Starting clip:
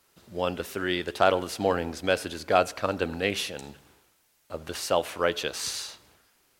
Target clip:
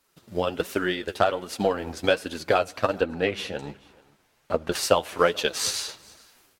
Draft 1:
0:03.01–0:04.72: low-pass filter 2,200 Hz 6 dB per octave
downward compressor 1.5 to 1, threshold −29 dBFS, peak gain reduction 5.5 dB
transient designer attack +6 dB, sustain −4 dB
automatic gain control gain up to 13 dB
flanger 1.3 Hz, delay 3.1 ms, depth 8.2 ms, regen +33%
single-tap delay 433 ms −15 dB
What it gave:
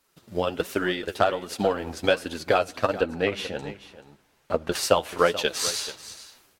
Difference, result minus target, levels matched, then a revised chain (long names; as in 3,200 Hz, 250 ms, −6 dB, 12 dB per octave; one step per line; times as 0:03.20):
echo-to-direct +10 dB
0:03.01–0:04.72: low-pass filter 2,200 Hz 6 dB per octave
downward compressor 1.5 to 1, threshold −29 dBFS, peak gain reduction 5.5 dB
transient designer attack +6 dB, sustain −4 dB
automatic gain control gain up to 13 dB
flanger 1.3 Hz, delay 3.1 ms, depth 8.2 ms, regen +33%
single-tap delay 433 ms −25 dB